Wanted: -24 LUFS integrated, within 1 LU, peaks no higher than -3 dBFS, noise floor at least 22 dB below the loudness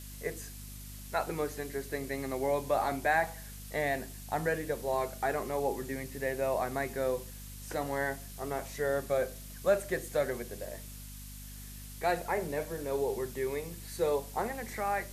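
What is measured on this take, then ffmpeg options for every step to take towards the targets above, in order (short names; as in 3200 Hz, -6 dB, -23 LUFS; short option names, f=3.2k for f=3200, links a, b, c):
hum 50 Hz; harmonics up to 250 Hz; hum level -45 dBFS; noise floor -46 dBFS; noise floor target -56 dBFS; loudness -33.5 LUFS; peak -15.5 dBFS; loudness target -24.0 LUFS
-> -af "bandreject=f=50:t=h:w=6,bandreject=f=100:t=h:w=6,bandreject=f=150:t=h:w=6,bandreject=f=200:t=h:w=6,bandreject=f=250:t=h:w=6"
-af "afftdn=nr=10:nf=-46"
-af "volume=9.5dB"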